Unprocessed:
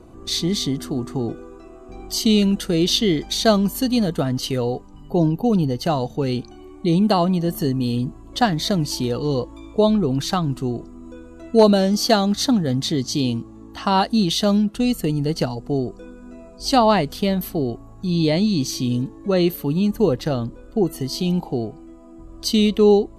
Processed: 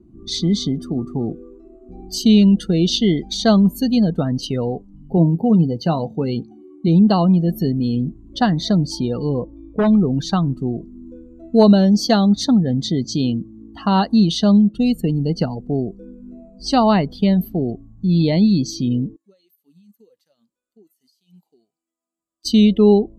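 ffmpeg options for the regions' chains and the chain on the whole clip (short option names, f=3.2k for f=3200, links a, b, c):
-filter_complex "[0:a]asettb=1/sr,asplit=3[a][b][c];[a]atrim=end=5.174[d];[b]atrim=start=5.17:end=6.88,asetpts=PTS-STARTPTS,afade=t=in:d=0.004:c=qsin,afade=t=out:st=1.706:d=0.004:c=qsin,highpass=87,asplit=2[e][f];[f]adelay=18,volume=-12dB[g];[e][g]amix=inputs=2:normalize=0,atrim=end_sample=75411[h];[c]atrim=start=6.876[i];[d][h]acrossfade=d=0.004:c1=hsin:c2=qsin[j];[j][i]acrossfade=d=0.004:c1=qsin:c2=hsin,asettb=1/sr,asplit=3[k][l][m];[k]atrim=end=9.294[n];[l]atrim=start=9.29:end=9.93,asetpts=PTS-STARTPTS,afade=t=in:d=0.004:c=qsin,afade=t=out:st=0.636:d=0.004:c=qsin,lowpass=f=1.7k:p=1,aeval=exprs='0.251*(abs(mod(val(0)/0.251+3,4)-2)-1)':c=same[o];[m]atrim=start=9.926[p];[n][o]acrossfade=d=0.004:c1=hsin:c2=qsin[q];[q][p]acrossfade=d=0.004:c1=qsin:c2=hsin,asettb=1/sr,asplit=3[r][s][t];[r]atrim=end=19.164[u];[s]atrim=start=19.16:end=22.45,asetpts=PTS-STARTPTS,afade=t=in:d=0.004:c=qsin,afade=t=out:st=3.286:d=0.004:c=qsin,aderivative,acompressor=threshold=-43dB:ratio=8:attack=3.2:release=140:knee=1:detection=peak[v];[t]atrim=start=22.446[w];[u][v]acrossfade=d=0.004:c1=hsin:c2=qsin[x];[x][w]acrossfade=d=0.004:c1=qsin:c2=hsin,equalizer=f=190:w=1.9:g=7.5,afftdn=nr=21:nf=-33,adynamicequalizer=threshold=0.00891:dfrequency=7600:dqfactor=0.7:tfrequency=7600:tqfactor=0.7:attack=5:release=100:ratio=0.375:range=2:mode=cutabove:tftype=highshelf,volume=-1dB"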